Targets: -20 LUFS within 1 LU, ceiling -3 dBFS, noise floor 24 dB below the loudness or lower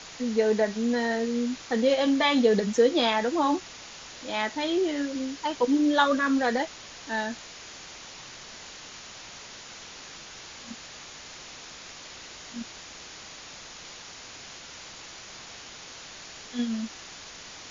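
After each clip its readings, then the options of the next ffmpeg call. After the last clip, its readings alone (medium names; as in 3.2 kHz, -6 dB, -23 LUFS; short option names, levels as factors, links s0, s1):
noise floor -45 dBFS; noise floor target -50 dBFS; loudness -26.0 LUFS; peak level -9.5 dBFS; loudness target -20.0 LUFS
-> -af "afftdn=nr=6:nf=-45"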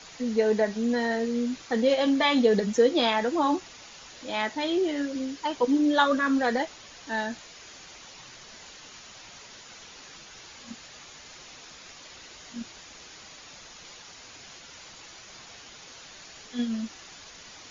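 noise floor -48 dBFS; noise floor target -50 dBFS
-> -af "afftdn=nr=6:nf=-48"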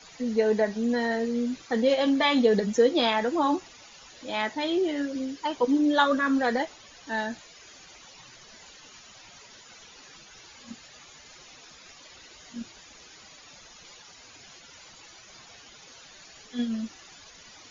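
noise floor -51 dBFS; loudness -26.0 LUFS; peak level -9.5 dBFS; loudness target -20.0 LUFS
-> -af "volume=2"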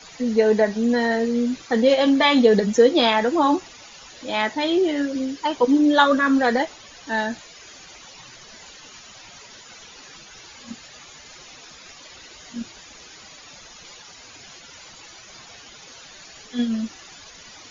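loudness -20.0 LUFS; peak level -3.5 dBFS; noise floor -45 dBFS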